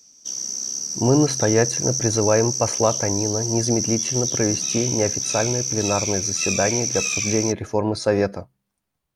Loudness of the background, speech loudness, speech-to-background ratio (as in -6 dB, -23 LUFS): -23.0 LUFS, -23.0 LUFS, 0.0 dB